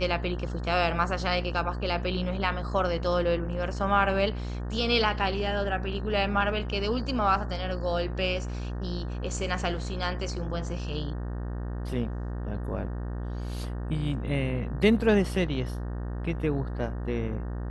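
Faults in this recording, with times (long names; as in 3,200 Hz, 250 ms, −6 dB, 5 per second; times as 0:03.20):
mains buzz 60 Hz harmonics 31 −33 dBFS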